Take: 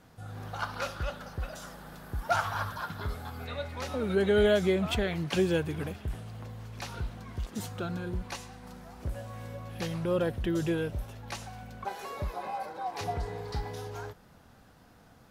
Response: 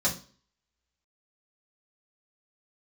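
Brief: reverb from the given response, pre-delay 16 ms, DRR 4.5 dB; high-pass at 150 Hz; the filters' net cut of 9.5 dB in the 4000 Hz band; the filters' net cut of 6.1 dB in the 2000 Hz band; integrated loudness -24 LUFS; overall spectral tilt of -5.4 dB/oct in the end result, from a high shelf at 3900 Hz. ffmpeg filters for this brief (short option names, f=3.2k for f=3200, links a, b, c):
-filter_complex "[0:a]highpass=150,equalizer=f=2k:t=o:g=-6.5,highshelf=f=3.9k:g=-3.5,equalizer=f=4k:t=o:g=-8,asplit=2[a][b];[1:a]atrim=start_sample=2205,adelay=16[c];[b][c]afir=irnorm=-1:irlink=0,volume=-14dB[d];[a][d]amix=inputs=2:normalize=0,volume=7dB"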